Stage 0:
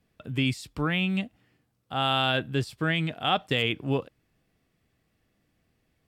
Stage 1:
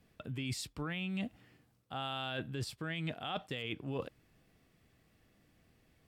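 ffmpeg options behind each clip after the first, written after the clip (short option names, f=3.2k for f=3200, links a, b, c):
-af "alimiter=limit=-21.5dB:level=0:latency=1:release=105,areverse,acompressor=threshold=-38dB:ratio=12,areverse,volume=3dB"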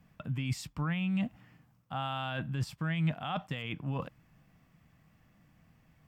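-af "equalizer=f=160:t=o:w=0.67:g=8,equalizer=f=400:t=o:w=0.67:g=-10,equalizer=f=1k:t=o:w=0.67:g=5,equalizer=f=4k:t=o:w=0.67:g=-7,equalizer=f=10k:t=o:w=0.67:g=-8,volume=3dB"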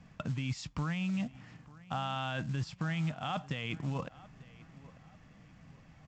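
-filter_complex "[0:a]acompressor=threshold=-41dB:ratio=3,asplit=2[a][b];[b]adelay=893,lowpass=f=2.5k:p=1,volume=-19.5dB,asplit=2[c][d];[d]adelay=893,lowpass=f=2.5k:p=1,volume=0.41,asplit=2[e][f];[f]adelay=893,lowpass=f=2.5k:p=1,volume=0.41[g];[a][c][e][g]amix=inputs=4:normalize=0,aresample=16000,acrusher=bits=6:mode=log:mix=0:aa=0.000001,aresample=44100,volume=6.5dB"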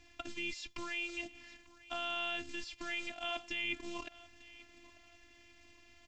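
-filter_complex "[0:a]highshelf=f=1.8k:t=q:w=1.5:g=9,afftfilt=real='hypot(re,im)*cos(PI*b)':imag='0':win_size=512:overlap=0.75,acrossover=split=2800[a][b];[b]acompressor=threshold=-44dB:ratio=4:attack=1:release=60[c];[a][c]amix=inputs=2:normalize=0"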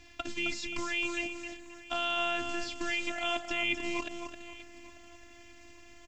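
-af "aecho=1:1:264|528|792:0.447|0.125|0.035,volume=6.5dB"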